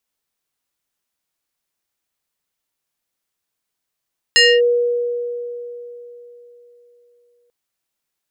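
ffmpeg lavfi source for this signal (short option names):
-f lavfi -i "aevalsrc='0.447*pow(10,-3*t/3.69)*sin(2*PI*481*t+2.3*clip(1-t/0.25,0,1)*sin(2*PI*4.87*481*t))':d=3.14:s=44100"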